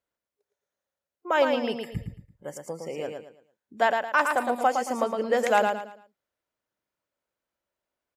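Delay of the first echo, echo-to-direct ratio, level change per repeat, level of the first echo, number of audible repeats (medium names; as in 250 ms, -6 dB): 112 ms, -4.5 dB, -10.0 dB, -5.0 dB, 3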